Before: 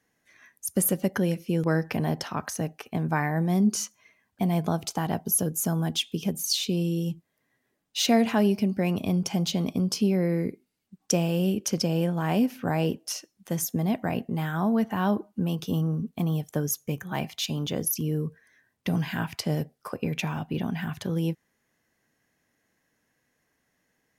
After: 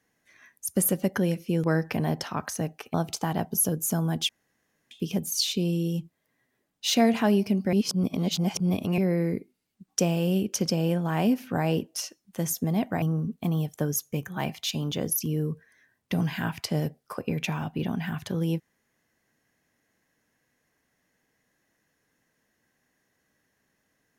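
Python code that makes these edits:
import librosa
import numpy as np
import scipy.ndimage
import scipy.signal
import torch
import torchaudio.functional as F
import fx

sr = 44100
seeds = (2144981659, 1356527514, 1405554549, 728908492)

y = fx.edit(x, sr, fx.cut(start_s=2.94, length_s=1.74),
    fx.insert_room_tone(at_s=6.03, length_s=0.62),
    fx.reverse_span(start_s=8.85, length_s=1.25),
    fx.cut(start_s=14.14, length_s=1.63), tone=tone)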